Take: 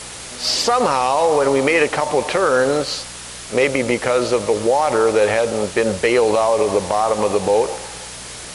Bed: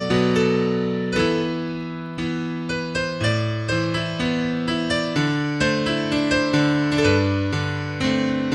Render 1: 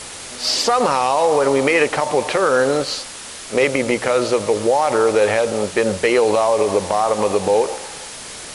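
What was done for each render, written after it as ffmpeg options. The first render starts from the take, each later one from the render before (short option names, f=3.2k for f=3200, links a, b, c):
-af "bandreject=f=60:t=h:w=4,bandreject=f=120:t=h:w=4,bandreject=f=180:t=h:w=4"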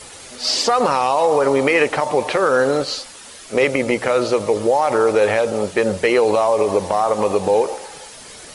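-af "afftdn=nr=8:nf=-34"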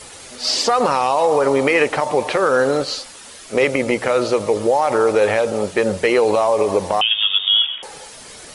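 -filter_complex "[0:a]asettb=1/sr,asplit=3[a][b][c];[a]atrim=end=7.014[d];[b]atrim=start=7.01:end=7.83,asetpts=PTS-STARTPTS,afade=t=in:d=0.004:c=qsin,afade=t=out:st=0.816:d=0.004:c=qsin,lowpass=f=3.2k:t=q:w=0.5098,lowpass=f=3.2k:t=q:w=0.6013,lowpass=f=3.2k:t=q:w=0.9,lowpass=f=3.2k:t=q:w=2.563,afreqshift=-3800[e];[c]atrim=start=7.826[f];[d][e]acrossfade=d=0.004:c1=hsin:c2=qsin[g];[g][f]acrossfade=d=0.004:c1=qsin:c2=hsin"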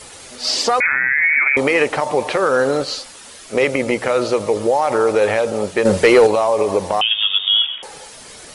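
-filter_complex "[0:a]asettb=1/sr,asplit=3[a][b][c];[a]atrim=end=0.804[d];[b]atrim=start=0.8:end=1.57,asetpts=PTS-STARTPTS,afade=t=in:d=0.004:c=qsin,afade=t=out:st=0.766:d=0.004:c=qsin,lowpass=f=2.3k:t=q:w=0.5098,lowpass=f=2.3k:t=q:w=0.6013,lowpass=f=2.3k:t=q:w=0.9,lowpass=f=2.3k:t=q:w=2.563,afreqshift=-2700[e];[c]atrim=start=1.566[f];[d][e]acrossfade=d=0.004:c1=hsin:c2=qsin[g];[g][f]acrossfade=d=0.004:c1=qsin:c2=hsin,asettb=1/sr,asplit=3[h][i][j];[h]atrim=end=5.854[k];[i]atrim=start=5.85:end=6.27,asetpts=PTS-STARTPTS,afade=t=in:d=0.004:c=qsin,afade=t=out:st=0.416:d=0.004:c=qsin,acontrast=78[l];[j]atrim=start=6.266[m];[k][l]acrossfade=d=0.004:c1=hsin:c2=qsin[n];[n][m]acrossfade=d=0.004:c1=qsin:c2=hsin"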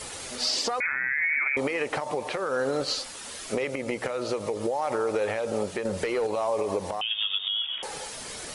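-af "acompressor=threshold=-20dB:ratio=10,alimiter=limit=-17dB:level=0:latency=1:release=466"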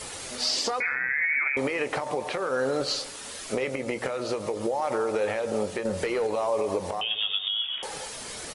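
-filter_complex "[0:a]asplit=2[a][b];[b]adelay=23,volume=-13dB[c];[a][c]amix=inputs=2:normalize=0,asplit=2[d][e];[e]adelay=137,lowpass=f=2.2k:p=1,volume=-18.5dB,asplit=2[f][g];[g]adelay=137,lowpass=f=2.2k:p=1,volume=0.55,asplit=2[h][i];[i]adelay=137,lowpass=f=2.2k:p=1,volume=0.55,asplit=2[j][k];[k]adelay=137,lowpass=f=2.2k:p=1,volume=0.55,asplit=2[l][m];[m]adelay=137,lowpass=f=2.2k:p=1,volume=0.55[n];[d][f][h][j][l][n]amix=inputs=6:normalize=0"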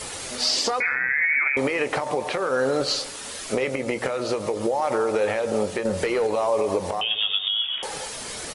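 -af "volume=4dB"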